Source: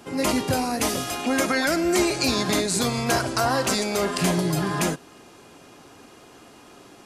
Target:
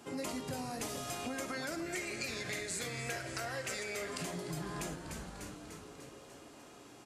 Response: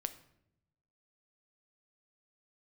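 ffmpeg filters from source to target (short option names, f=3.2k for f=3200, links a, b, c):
-filter_complex "[0:a]asettb=1/sr,asplit=3[a][b][c];[a]atrim=end=1.864[d];[b]atrim=start=1.86:end=4.09,asetpts=PTS-STARTPTS,afade=t=in:d=0.004:c=qsin,afade=t=out:st=2.226:d=0.004:c=qsin,equalizer=f=250:t=o:w=1:g=-9,equalizer=f=500:t=o:w=1:g=4,equalizer=f=1k:t=o:w=1:g=-11,equalizer=f=2k:t=o:w=1:g=12,equalizer=f=4k:t=o:w=1:g=-3[e];[c]atrim=start=4.086[f];[d][e]acrossfade=d=0.004:c1=hsin:c2=qsin[g];[g][f]acrossfade=d=0.004:c1=qsin:c2=hsin,asplit=8[h][i][j][k][l][m][n][o];[i]adelay=297,afreqshift=-120,volume=-13dB[p];[j]adelay=594,afreqshift=-240,volume=-16.9dB[q];[k]adelay=891,afreqshift=-360,volume=-20.8dB[r];[l]adelay=1188,afreqshift=-480,volume=-24.6dB[s];[m]adelay=1485,afreqshift=-600,volume=-28.5dB[t];[n]adelay=1782,afreqshift=-720,volume=-32.4dB[u];[o]adelay=2079,afreqshift=-840,volume=-36.3dB[v];[h][p][q][r][s][t][u][v]amix=inputs=8:normalize=0[w];[1:a]atrim=start_sample=2205[x];[w][x]afir=irnorm=-1:irlink=0,acompressor=threshold=-30dB:ratio=6,highpass=45,equalizer=f=7.5k:w=3:g=4,bandreject=f=60:t=h:w=6,bandreject=f=120:t=h:w=6,bandreject=f=180:t=h:w=6,volume=-7dB"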